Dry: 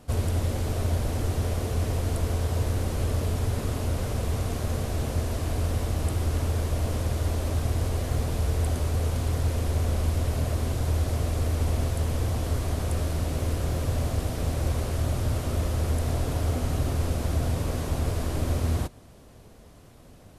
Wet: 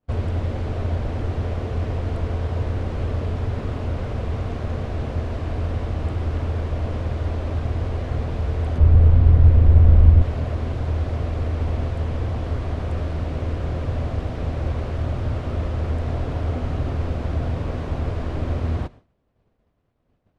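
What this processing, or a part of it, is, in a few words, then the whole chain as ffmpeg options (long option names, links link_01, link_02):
hearing-loss simulation: -filter_complex "[0:a]lowpass=2800,agate=range=-33dB:threshold=-37dB:ratio=3:detection=peak,asettb=1/sr,asplit=3[link_01][link_02][link_03];[link_01]atrim=end=8.784[link_04];[link_02]atrim=start=8.78:end=10.22,asetpts=PTS-STARTPTS,afade=type=in:duration=0.004:curve=qsin,afade=type=out:start_time=1.436:duration=0.004:curve=qsin,aemphasis=mode=reproduction:type=bsi[link_05];[link_03]atrim=start=10.216[link_06];[link_04][link_05]acrossfade=duration=0.004:curve1=hsin:curve2=qsin[link_07];[link_07][link_06]acrossfade=duration=0.004:curve1=qsin:curve2=hsin,volume=2dB"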